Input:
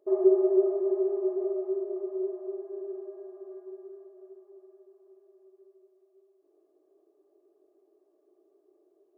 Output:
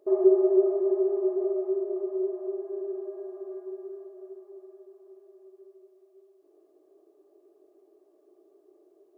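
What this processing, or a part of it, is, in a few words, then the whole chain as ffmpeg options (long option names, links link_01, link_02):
parallel compression: -filter_complex "[0:a]asplit=2[link_01][link_02];[link_02]acompressor=threshold=-40dB:ratio=6,volume=-3dB[link_03];[link_01][link_03]amix=inputs=2:normalize=0,volume=1dB"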